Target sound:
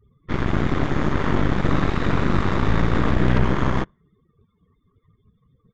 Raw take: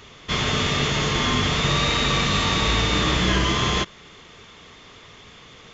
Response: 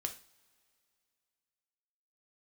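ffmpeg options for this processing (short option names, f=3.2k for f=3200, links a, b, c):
-af "afftdn=nr=32:nf=-39,firequalizer=gain_entry='entry(180,0);entry(460,-10);entry(1700,-8);entry(2600,-25)':delay=0.05:min_phase=1,aeval=exprs='0.282*(cos(1*acos(clip(val(0)/0.282,-1,1)))-cos(1*PI/2))+0.1*(cos(4*acos(clip(val(0)/0.282,-1,1)))-cos(4*PI/2))+0.00891*(cos(7*acos(clip(val(0)/0.282,-1,1)))-cos(7*PI/2))+0.0708*(cos(8*acos(clip(val(0)/0.282,-1,1)))-cos(8*PI/2))':c=same"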